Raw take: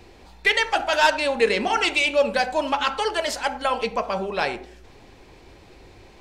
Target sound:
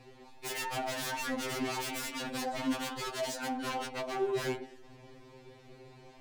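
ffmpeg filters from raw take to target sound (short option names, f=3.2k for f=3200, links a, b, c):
-af "aeval=exprs='0.0596*(abs(mod(val(0)/0.0596+3,4)-2)-1)':c=same,equalizer=f=210:w=0.36:g=5.5,afftfilt=real='re*2.45*eq(mod(b,6),0)':imag='im*2.45*eq(mod(b,6),0)':win_size=2048:overlap=0.75,volume=-6dB"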